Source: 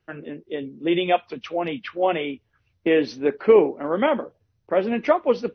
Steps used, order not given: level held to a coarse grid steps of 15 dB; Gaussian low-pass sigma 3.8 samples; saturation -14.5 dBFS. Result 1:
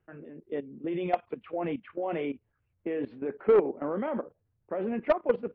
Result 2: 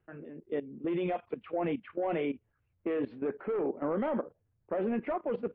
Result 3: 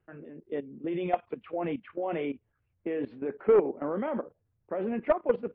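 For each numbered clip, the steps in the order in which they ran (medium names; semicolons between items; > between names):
level held to a coarse grid > Gaussian low-pass > saturation; saturation > level held to a coarse grid > Gaussian low-pass; level held to a coarse grid > saturation > Gaussian low-pass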